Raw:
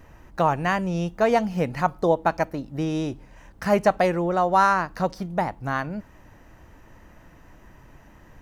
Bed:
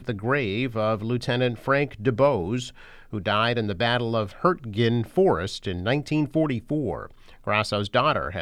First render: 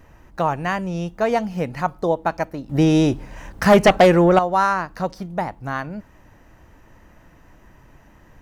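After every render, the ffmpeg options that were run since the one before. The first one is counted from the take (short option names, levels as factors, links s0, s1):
-filter_complex "[0:a]asettb=1/sr,asplit=3[s0][s1][s2];[s0]atrim=end=2.694[s3];[s1]atrim=start=2.69:end=4.39,asetpts=PTS-STARTPTS,afade=t=in:d=0.004:c=qsin,afade=t=out:st=1.696:d=0.004:c=qsin,aeval=exprs='0.501*sin(PI/2*2.24*val(0)/0.501)':c=same[s4];[s2]atrim=start=4.386[s5];[s3][s4]acrossfade=d=0.004:c1=hsin:c2=qsin[s6];[s6][s5]acrossfade=d=0.004:c1=qsin:c2=hsin"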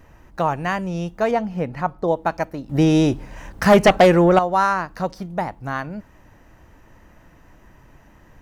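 -filter_complex "[0:a]asettb=1/sr,asplit=3[s0][s1][s2];[s0]atrim=end=1.314[s3];[s1]atrim=start=1.31:end=2.08,asetpts=PTS-STARTPTS,afade=t=in:d=0.004:c=qsin,afade=t=out:st=0.766:d=0.004:c=qsin,highshelf=f=3700:g=-12[s4];[s2]atrim=start=2.076[s5];[s3][s4]acrossfade=d=0.004:c1=hsin:c2=qsin[s6];[s6][s5]acrossfade=d=0.004:c1=qsin:c2=hsin"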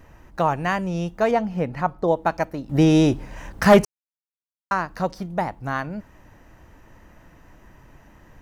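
-filter_complex "[0:a]asplit=3[s0][s1][s2];[s0]atrim=end=3.85,asetpts=PTS-STARTPTS,afade=t=out:st=3.846:d=0.004:c=hsin[s3];[s1]atrim=start=3.85:end=4.71,asetpts=PTS-STARTPTS,volume=0[s4];[s2]atrim=start=4.71,asetpts=PTS-STARTPTS,afade=t=in:d=0.004:c=hsin[s5];[s3][s4][s5]concat=n=3:v=0:a=1"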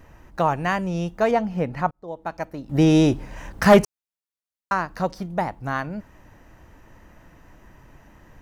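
-filter_complex "[0:a]asplit=2[s0][s1];[s0]atrim=end=1.91,asetpts=PTS-STARTPTS,afade=t=out:st=1.906:d=0.004:c=hsin[s2];[s1]atrim=start=1.91,asetpts=PTS-STARTPTS,afade=t=in:d=0.98[s3];[s2][s3]concat=n=2:v=0:a=1"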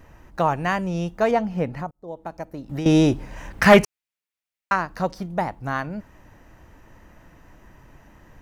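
-filter_complex "[0:a]asettb=1/sr,asplit=3[s0][s1][s2];[s0]atrim=end=1.684[s3];[s1]atrim=start=1.68:end=2.86,asetpts=PTS-STARTPTS,afade=t=in:d=0.004:c=qsin,afade=t=out:st=1.176:d=0.004:c=qsin,acrossover=split=820|6200[s4][s5][s6];[s4]acompressor=threshold=0.0355:ratio=4[s7];[s5]acompressor=threshold=0.00794:ratio=4[s8];[s6]acompressor=threshold=0.00126:ratio=4[s9];[s7][s8][s9]amix=inputs=3:normalize=0[s10];[s2]atrim=start=2.856[s11];[s3][s10]acrossfade=d=0.004:c1=hsin:c2=qsin[s12];[s12][s11]acrossfade=d=0.004:c1=qsin:c2=hsin,asettb=1/sr,asplit=3[s13][s14][s15];[s13]atrim=end=3.504[s16];[s14]atrim=start=3.5:end=4.76,asetpts=PTS-STARTPTS,afade=t=in:d=0.004:c=qsin,afade=t=out:st=1.256:d=0.004:c=qsin,equalizer=f=2300:w=1.3:g=8[s17];[s15]atrim=start=4.756[s18];[s16][s17]acrossfade=d=0.004:c1=hsin:c2=qsin[s19];[s19][s18]acrossfade=d=0.004:c1=qsin:c2=hsin"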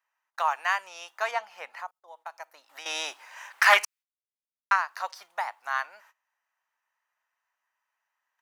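-af "agate=range=0.0631:threshold=0.00794:ratio=16:detection=peak,highpass=f=920:w=0.5412,highpass=f=920:w=1.3066"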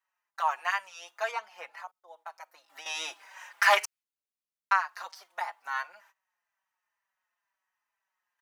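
-filter_complex "[0:a]asplit=2[s0][s1];[s1]adelay=4.8,afreqshift=-2.1[s2];[s0][s2]amix=inputs=2:normalize=1"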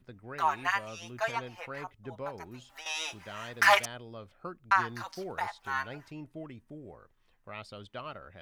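-filter_complex "[1:a]volume=0.0944[s0];[0:a][s0]amix=inputs=2:normalize=0"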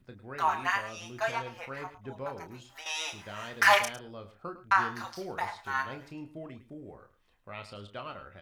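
-filter_complex "[0:a]asplit=2[s0][s1];[s1]adelay=30,volume=0.398[s2];[s0][s2]amix=inputs=2:normalize=0,aecho=1:1:106:0.2"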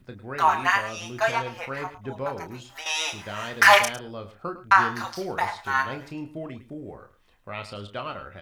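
-af "volume=2.37,alimiter=limit=0.708:level=0:latency=1"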